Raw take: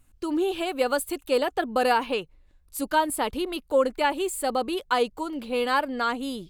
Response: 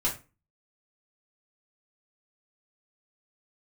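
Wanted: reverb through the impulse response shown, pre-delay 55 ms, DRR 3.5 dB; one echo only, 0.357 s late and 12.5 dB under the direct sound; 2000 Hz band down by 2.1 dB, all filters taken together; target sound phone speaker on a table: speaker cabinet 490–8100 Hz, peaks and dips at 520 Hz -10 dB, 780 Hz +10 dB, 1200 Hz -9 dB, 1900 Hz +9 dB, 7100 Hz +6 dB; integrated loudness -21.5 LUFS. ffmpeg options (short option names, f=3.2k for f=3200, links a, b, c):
-filter_complex "[0:a]equalizer=f=2k:t=o:g=-6.5,aecho=1:1:357:0.237,asplit=2[a][b];[1:a]atrim=start_sample=2205,adelay=55[c];[b][c]afir=irnorm=-1:irlink=0,volume=-11dB[d];[a][d]amix=inputs=2:normalize=0,highpass=f=490:w=0.5412,highpass=f=490:w=1.3066,equalizer=f=520:t=q:w=4:g=-10,equalizer=f=780:t=q:w=4:g=10,equalizer=f=1.2k:t=q:w=4:g=-9,equalizer=f=1.9k:t=q:w=4:g=9,equalizer=f=7.1k:t=q:w=4:g=6,lowpass=f=8.1k:w=0.5412,lowpass=f=8.1k:w=1.3066,volume=3.5dB"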